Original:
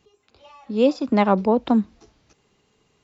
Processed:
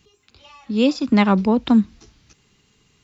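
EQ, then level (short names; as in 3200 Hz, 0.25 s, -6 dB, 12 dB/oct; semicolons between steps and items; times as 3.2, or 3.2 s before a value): bell 610 Hz -12.5 dB 1.9 oct; +8.0 dB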